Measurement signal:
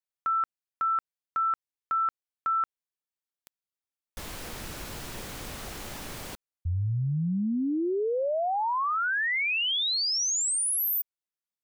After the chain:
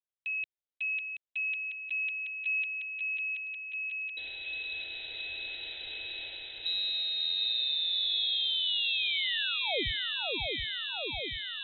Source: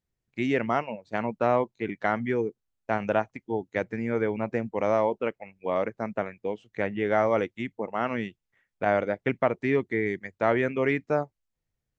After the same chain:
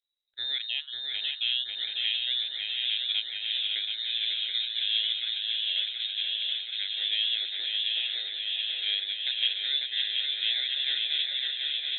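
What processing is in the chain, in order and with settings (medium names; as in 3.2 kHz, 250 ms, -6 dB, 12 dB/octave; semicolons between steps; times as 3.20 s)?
frequency inversion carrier 3.9 kHz; static phaser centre 470 Hz, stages 4; shuffle delay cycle 728 ms, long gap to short 3:1, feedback 76%, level -4 dB; trim -5 dB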